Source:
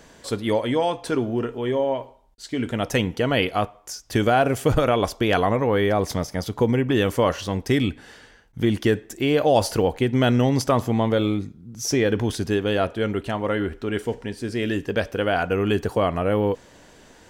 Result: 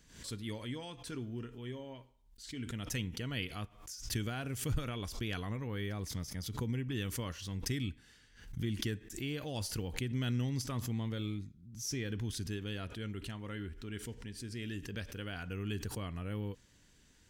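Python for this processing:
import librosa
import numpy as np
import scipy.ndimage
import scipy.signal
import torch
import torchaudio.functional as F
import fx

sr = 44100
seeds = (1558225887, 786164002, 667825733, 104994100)

y = fx.tone_stack(x, sr, knobs='6-0-2')
y = fx.pre_swell(y, sr, db_per_s=93.0)
y = y * 10.0 ** (2.5 / 20.0)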